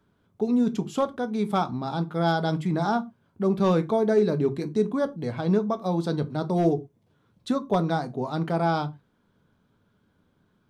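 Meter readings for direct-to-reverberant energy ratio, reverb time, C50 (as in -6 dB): 8.5 dB, no single decay rate, 21.0 dB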